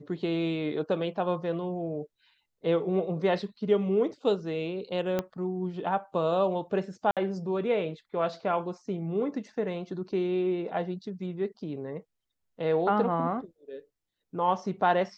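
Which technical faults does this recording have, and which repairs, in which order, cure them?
5.19 pop -15 dBFS
7.11–7.17 gap 57 ms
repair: de-click; interpolate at 7.11, 57 ms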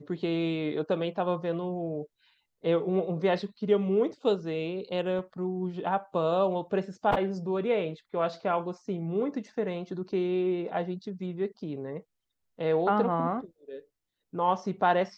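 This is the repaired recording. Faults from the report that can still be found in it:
5.19 pop

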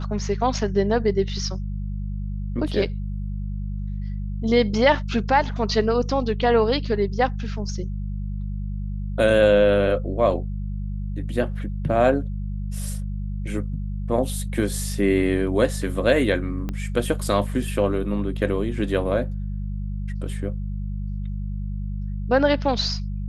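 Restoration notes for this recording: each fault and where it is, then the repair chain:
hum 50 Hz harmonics 4 -28 dBFS
16.69 pop -16 dBFS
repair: de-click; de-hum 50 Hz, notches 4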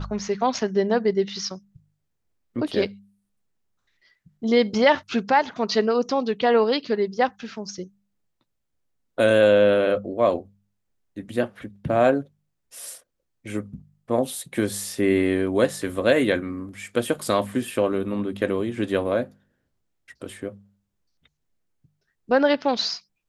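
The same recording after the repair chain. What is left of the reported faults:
16.69 pop

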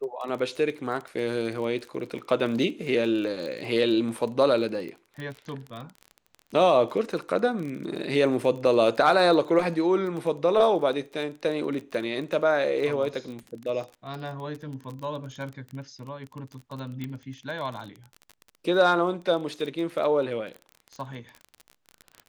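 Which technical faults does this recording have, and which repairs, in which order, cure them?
crackle 29/s -33 dBFS
17.04 pop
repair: de-click

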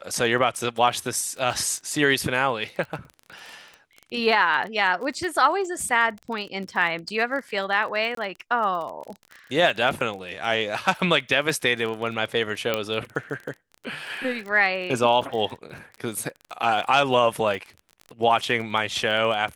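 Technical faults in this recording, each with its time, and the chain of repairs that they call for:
crackle 27/s -31 dBFS
8.15–8.17 gap 23 ms
12.74 pop -9 dBFS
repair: de-click; interpolate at 8.15, 23 ms

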